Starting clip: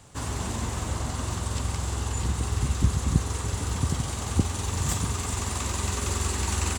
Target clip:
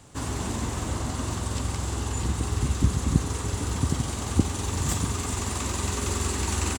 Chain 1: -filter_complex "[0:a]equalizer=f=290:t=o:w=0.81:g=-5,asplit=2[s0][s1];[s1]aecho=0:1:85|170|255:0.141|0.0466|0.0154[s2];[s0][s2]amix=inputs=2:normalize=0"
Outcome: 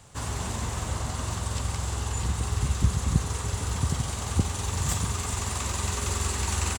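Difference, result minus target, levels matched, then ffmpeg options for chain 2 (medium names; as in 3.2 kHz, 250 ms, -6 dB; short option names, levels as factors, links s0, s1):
250 Hz band -4.5 dB
-filter_complex "[0:a]equalizer=f=290:t=o:w=0.81:g=5,asplit=2[s0][s1];[s1]aecho=0:1:85|170|255:0.141|0.0466|0.0154[s2];[s0][s2]amix=inputs=2:normalize=0"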